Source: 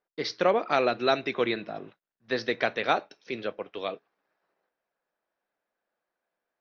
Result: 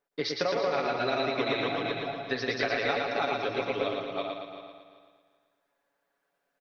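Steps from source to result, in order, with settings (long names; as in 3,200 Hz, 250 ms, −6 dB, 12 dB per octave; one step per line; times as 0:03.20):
feedback delay that plays each chunk backwards 192 ms, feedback 45%, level −1.5 dB
comb filter 7.1 ms, depth 69%
downward compressor 10 to 1, threshold −26 dBFS, peak gain reduction 12 dB
on a send: repeating echo 114 ms, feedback 57%, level −4 dB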